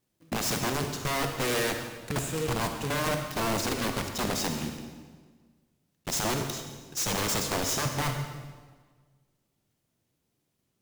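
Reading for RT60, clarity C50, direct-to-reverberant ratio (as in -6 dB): 1.5 s, 5.5 dB, 5.0 dB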